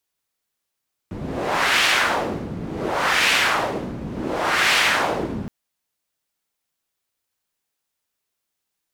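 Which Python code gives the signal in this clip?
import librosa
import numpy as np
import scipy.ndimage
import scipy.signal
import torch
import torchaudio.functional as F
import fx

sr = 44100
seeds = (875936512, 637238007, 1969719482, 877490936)

y = fx.wind(sr, seeds[0], length_s=4.37, low_hz=180.0, high_hz=2400.0, q=1.3, gusts=3, swing_db=12.0)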